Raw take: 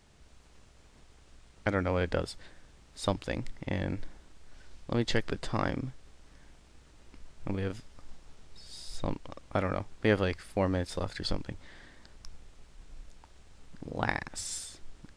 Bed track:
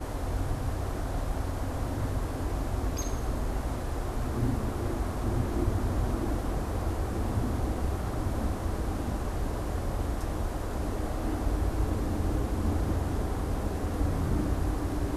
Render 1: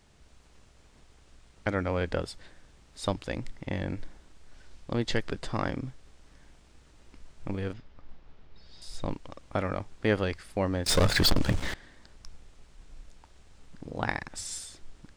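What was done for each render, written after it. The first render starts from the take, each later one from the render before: 7.73–8.82 air absorption 220 m; 10.86–11.74 sample leveller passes 5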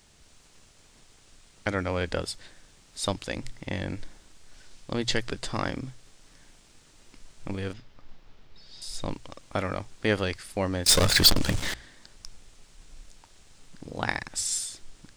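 high shelf 3000 Hz +10.5 dB; notches 60/120 Hz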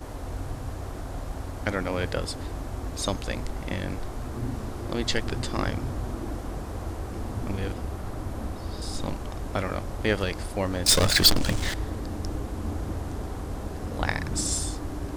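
add bed track -3 dB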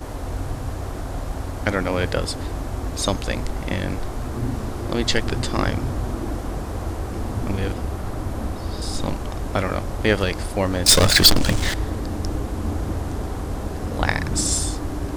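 gain +6 dB; limiter -1 dBFS, peak gain reduction 1.5 dB

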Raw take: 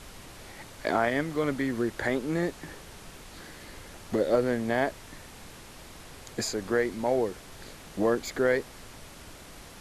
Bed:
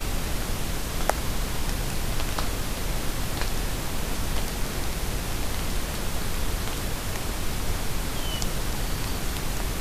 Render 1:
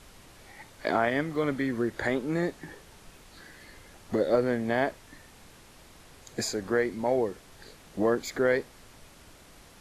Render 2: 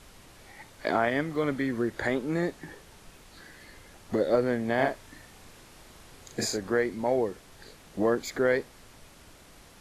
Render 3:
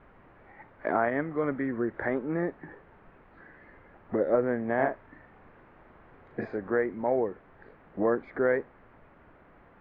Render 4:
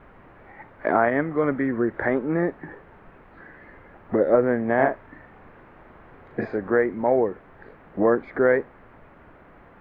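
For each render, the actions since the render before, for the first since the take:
noise print and reduce 6 dB
4.75–6.58 doubler 37 ms -4 dB
inverse Chebyshev low-pass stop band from 9400 Hz, stop band 80 dB; low shelf 140 Hz -6.5 dB
gain +6.5 dB

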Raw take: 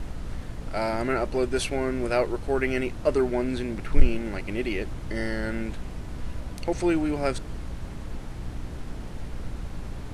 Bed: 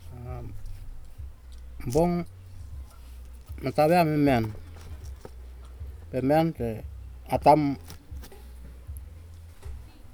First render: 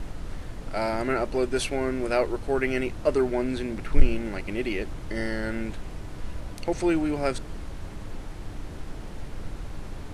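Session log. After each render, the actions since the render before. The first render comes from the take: de-hum 60 Hz, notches 4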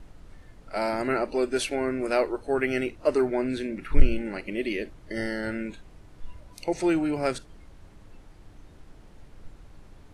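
noise print and reduce 13 dB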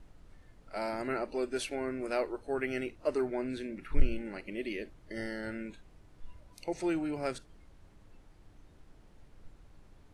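gain -8 dB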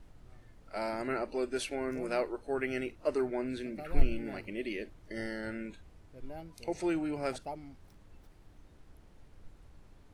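add bed -24 dB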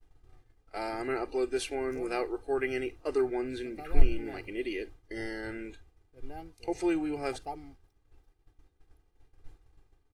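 expander -45 dBFS; comb 2.5 ms, depth 65%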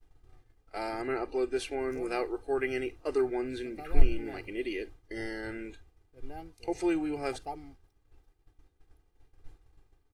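1.01–1.79 high shelf 4400 Hz -5.5 dB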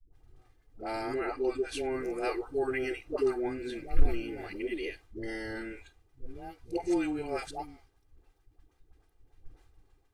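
dispersion highs, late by 0.126 s, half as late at 450 Hz; soft clip -9.5 dBFS, distortion -18 dB

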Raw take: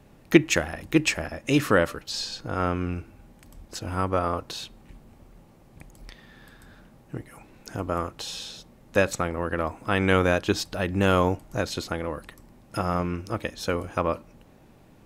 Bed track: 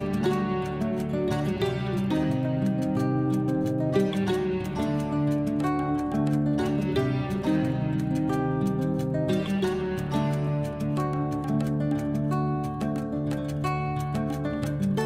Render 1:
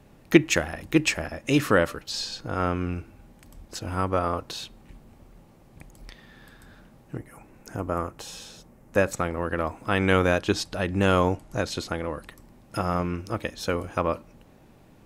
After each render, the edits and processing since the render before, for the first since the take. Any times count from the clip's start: 7.17–9.17 bell 3800 Hz -9 dB 1 oct; 10.39–12.23 LPF 12000 Hz 24 dB/oct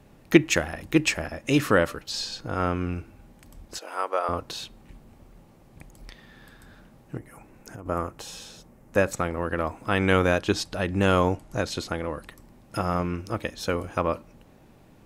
3.78–4.29 HPF 450 Hz 24 dB/oct; 7.18–7.86 compressor, threshold -36 dBFS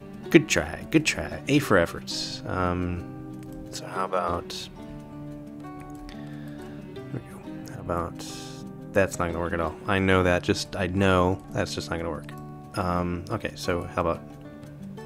add bed track -14 dB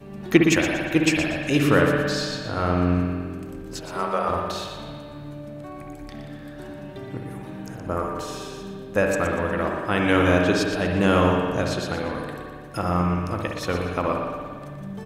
on a send: feedback echo 0.119 s, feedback 34%, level -9 dB; on the sum: spring tank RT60 1.8 s, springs 56 ms, chirp 35 ms, DRR 1 dB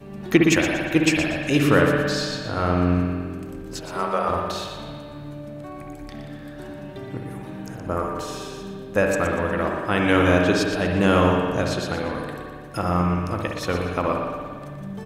gain +1 dB; limiter -3 dBFS, peak gain reduction 2.5 dB

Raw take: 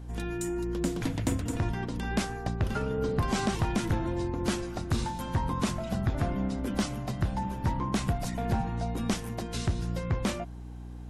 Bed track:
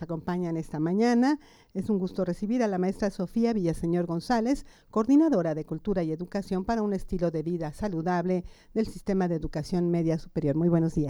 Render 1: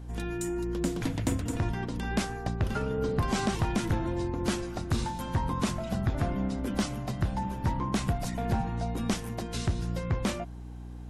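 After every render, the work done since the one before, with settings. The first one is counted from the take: nothing audible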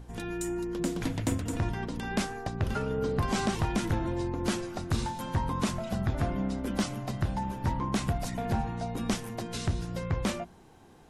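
notches 60/120/180/240/300/360 Hz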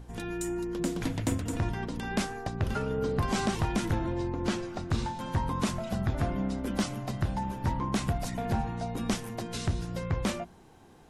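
4.06–5.26 air absorption 54 m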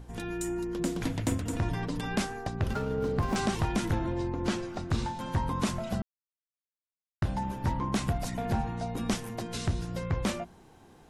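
1.69–2.16 comb 6.8 ms, depth 85%; 2.73–3.36 median filter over 15 samples; 6.02–7.22 mute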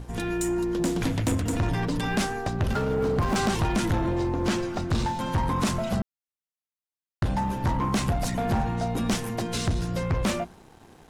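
sample leveller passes 2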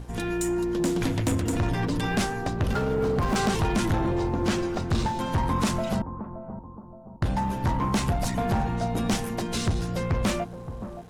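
analogue delay 0.572 s, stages 4096, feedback 43%, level -11 dB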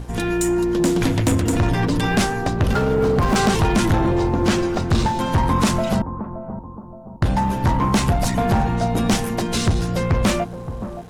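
gain +7 dB

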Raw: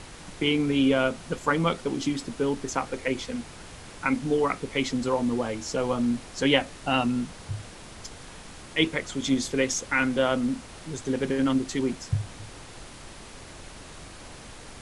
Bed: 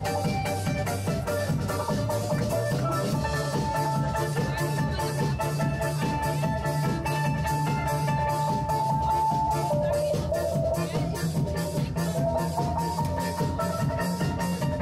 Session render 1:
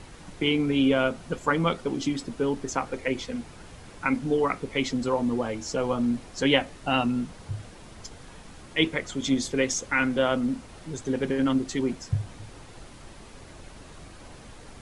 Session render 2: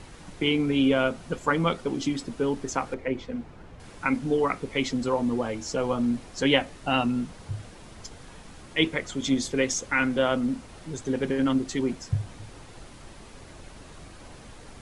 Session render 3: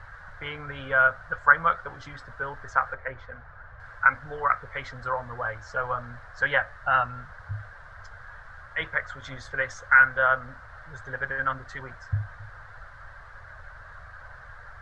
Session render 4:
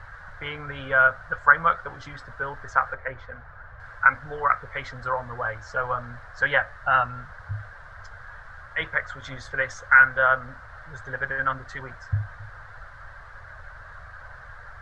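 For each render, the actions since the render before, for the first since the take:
denoiser 6 dB, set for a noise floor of -45 dBFS
2.94–3.8 LPF 1300 Hz 6 dB/oct
EQ curve 110 Hz 0 dB, 230 Hz -25 dB, 340 Hz -24 dB, 580 Hz -2 dB, 850 Hz -2 dB, 1600 Hz +14 dB, 2500 Hz -14 dB, 4200 Hz -11 dB, 9900 Hz -25 dB
gain +2 dB; limiter -2 dBFS, peak gain reduction 1.5 dB

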